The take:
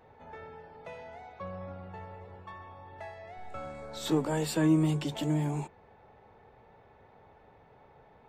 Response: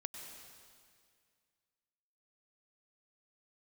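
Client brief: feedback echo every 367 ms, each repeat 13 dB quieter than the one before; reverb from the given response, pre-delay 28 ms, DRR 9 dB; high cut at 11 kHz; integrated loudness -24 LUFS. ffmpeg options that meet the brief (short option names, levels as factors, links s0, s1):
-filter_complex "[0:a]lowpass=11000,aecho=1:1:367|734|1101:0.224|0.0493|0.0108,asplit=2[s0][s1];[1:a]atrim=start_sample=2205,adelay=28[s2];[s1][s2]afir=irnorm=-1:irlink=0,volume=0.447[s3];[s0][s3]amix=inputs=2:normalize=0,volume=2.24"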